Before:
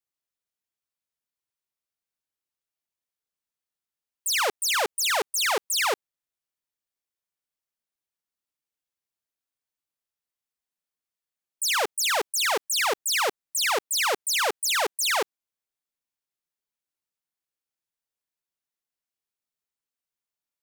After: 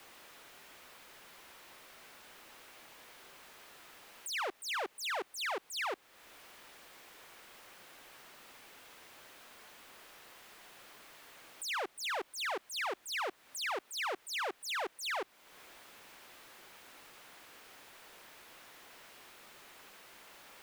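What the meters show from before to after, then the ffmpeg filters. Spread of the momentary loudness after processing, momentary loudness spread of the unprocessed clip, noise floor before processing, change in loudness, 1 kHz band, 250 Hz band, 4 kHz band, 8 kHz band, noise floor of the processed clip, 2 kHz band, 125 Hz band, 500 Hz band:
18 LU, 3 LU, under -85 dBFS, -13.5 dB, -11.0 dB, -7.5 dB, -13.5 dB, -18.0 dB, -66 dBFS, -11.0 dB, n/a, -12.0 dB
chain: -af "aeval=exprs='val(0)+0.5*0.01*sgn(val(0))':c=same,bass=f=250:g=-11,treble=f=4k:g=-13,acompressor=threshold=-44dB:ratio=2,afreqshift=-42"

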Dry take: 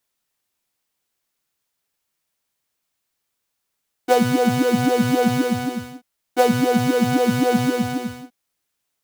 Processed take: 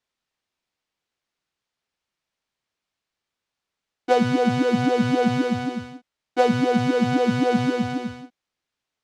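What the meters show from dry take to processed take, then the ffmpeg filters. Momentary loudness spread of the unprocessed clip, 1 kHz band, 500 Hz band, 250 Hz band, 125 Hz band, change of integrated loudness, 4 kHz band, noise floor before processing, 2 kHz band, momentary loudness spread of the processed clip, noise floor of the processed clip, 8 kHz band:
10 LU, -2.0 dB, -2.0 dB, -2.0 dB, -2.0 dB, -2.0 dB, -3.0 dB, -77 dBFS, -2.0 dB, 11 LU, under -85 dBFS, -10.0 dB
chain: -af "lowpass=4.9k,volume=-2dB"

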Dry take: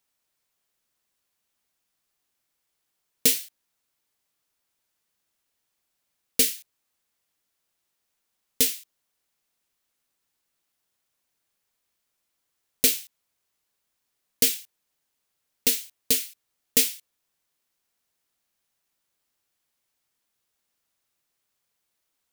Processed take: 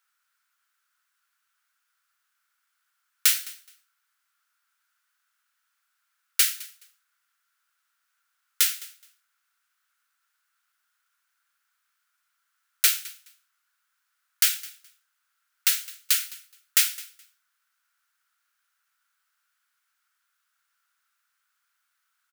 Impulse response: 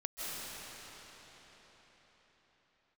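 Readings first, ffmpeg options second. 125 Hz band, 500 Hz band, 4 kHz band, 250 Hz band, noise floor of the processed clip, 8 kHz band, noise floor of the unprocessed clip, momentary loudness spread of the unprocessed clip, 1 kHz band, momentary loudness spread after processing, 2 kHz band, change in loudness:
under -35 dB, under -15 dB, +1.0 dB, under -25 dB, -77 dBFS, +0.5 dB, -79 dBFS, 13 LU, n/a, 17 LU, +5.0 dB, 0.0 dB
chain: -af "highpass=f=1.4k:t=q:w=6.7,aecho=1:1:211|422:0.0944|0.017"

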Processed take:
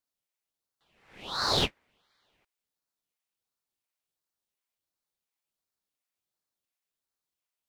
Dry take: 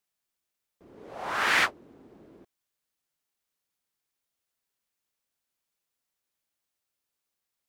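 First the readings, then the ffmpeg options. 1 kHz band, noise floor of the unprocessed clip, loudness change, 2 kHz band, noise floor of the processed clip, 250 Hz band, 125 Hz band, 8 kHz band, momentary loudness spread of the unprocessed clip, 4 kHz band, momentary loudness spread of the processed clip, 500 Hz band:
-4.5 dB, -85 dBFS, -2.5 dB, -13.0 dB, under -85 dBFS, +3.5 dB, +11.5 dB, -1.5 dB, 18 LU, +4.0 dB, 13 LU, +2.0 dB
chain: -af "highpass=f=1.4k:t=q:w=1.7,aeval=exprs='val(0)*sin(2*PI*1700*n/s+1700*0.65/1.4*sin(2*PI*1.4*n/s))':c=same,volume=-3dB"

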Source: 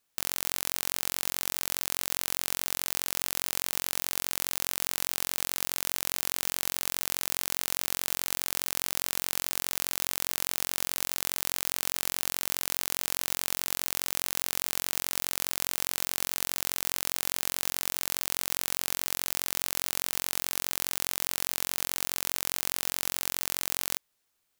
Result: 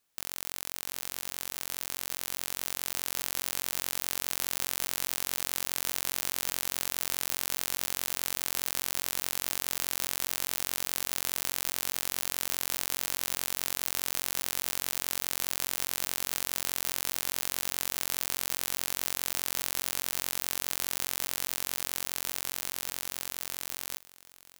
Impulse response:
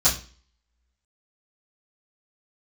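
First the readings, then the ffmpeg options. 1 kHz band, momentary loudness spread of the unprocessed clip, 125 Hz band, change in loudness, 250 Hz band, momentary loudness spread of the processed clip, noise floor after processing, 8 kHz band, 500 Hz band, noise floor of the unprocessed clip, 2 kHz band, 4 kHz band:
-1.5 dB, 0 LU, -1.5 dB, -1.5 dB, -1.5 dB, 4 LU, -52 dBFS, -1.5 dB, -1.5 dB, -77 dBFS, -1.5 dB, -1.5 dB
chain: -filter_complex "[0:a]alimiter=limit=-8.5dB:level=0:latency=1,dynaudnorm=f=310:g=17:m=6dB,asplit=2[a][b];[b]aecho=0:1:706:0.133[c];[a][c]amix=inputs=2:normalize=0"

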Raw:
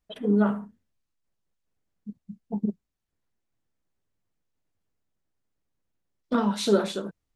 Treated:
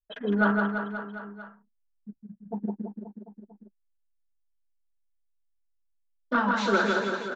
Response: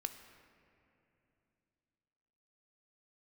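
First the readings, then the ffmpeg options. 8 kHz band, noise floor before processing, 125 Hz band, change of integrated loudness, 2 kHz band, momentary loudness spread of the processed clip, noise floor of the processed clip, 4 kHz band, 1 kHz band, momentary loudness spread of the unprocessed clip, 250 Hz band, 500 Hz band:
n/a, -82 dBFS, -2.0 dB, -1.0 dB, +14.0 dB, 19 LU, -74 dBFS, -1.5 dB, +6.5 dB, 22 LU, -2.0 dB, -1.5 dB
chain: -filter_complex "[0:a]anlmdn=0.0251,equalizer=f=1.6k:w=2.9:g=13.5,acrossover=split=100|3600[a][b][c];[a]acompressor=threshold=-60dB:ratio=16[d];[b]asplit=2[e][f];[f]highpass=f=720:p=1,volume=12dB,asoftclip=type=tanh:threshold=-7dB[g];[e][g]amix=inputs=2:normalize=0,lowpass=f=2.4k:p=1,volume=-6dB[h];[c]asoftclip=type=tanh:threshold=-33dB[i];[d][h][i]amix=inputs=3:normalize=0,flanger=delay=3.3:depth=2.9:regen=-34:speed=1.1:shape=sinusoidal,aecho=1:1:160|336|529.6|742.6|976.8:0.631|0.398|0.251|0.158|0.1,aresample=16000,aresample=44100"

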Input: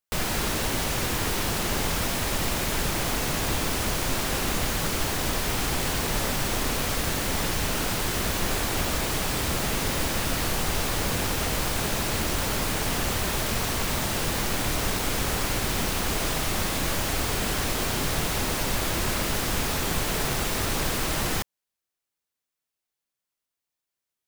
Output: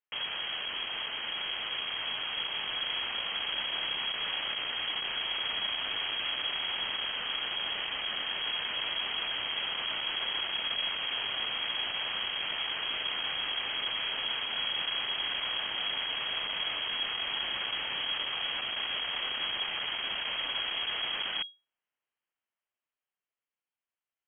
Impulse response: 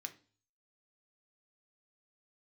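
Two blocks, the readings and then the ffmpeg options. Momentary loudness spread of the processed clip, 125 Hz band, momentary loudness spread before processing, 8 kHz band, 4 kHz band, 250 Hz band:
2 LU, -29.0 dB, 0 LU, under -40 dB, +2.0 dB, -23.0 dB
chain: -af "dynaudnorm=f=290:g=21:m=11.5dB,aeval=exprs='(tanh(28.2*val(0)+0.35)-tanh(0.35))/28.2':c=same,lowpass=f=2.8k:t=q:w=0.5098,lowpass=f=2.8k:t=q:w=0.6013,lowpass=f=2.8k:t=q:w=0.9,lowpass=f=2.8k:t=q:w=2.563,afreqshift=-3300,volume=-2.5dB"

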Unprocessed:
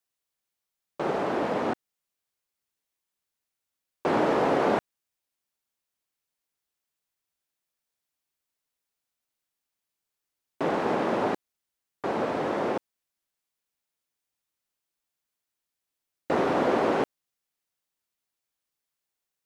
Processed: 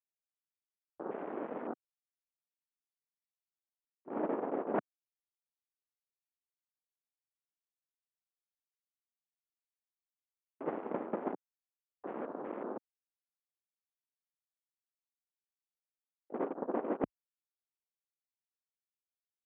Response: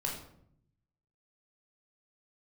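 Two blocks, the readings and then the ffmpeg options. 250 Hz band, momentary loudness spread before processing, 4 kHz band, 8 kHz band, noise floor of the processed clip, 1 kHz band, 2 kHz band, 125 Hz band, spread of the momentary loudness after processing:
-10.5 dB, 10 LU, under -25 dB, n/a, under -85 dBFS, -14.0 dB, -18.0 dB, -15.5 dB, 11 LU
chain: -af "lowshelf=f=450:g=9.5,agate=range=-29dB:threshold=-16dB:ratio=16:detection=peak,aeval=exprs='sgn(val(0))*max(abs(val(0))-0.00158,0)':c=same,highpass=f=220:w=0.5412,highpass=f=220:w=1.3066,areverse,acompressor=threshold=-48dB:ratio=20,areverse,afwtdn=0.000631,lowpass=1.7k,volume=17dB"

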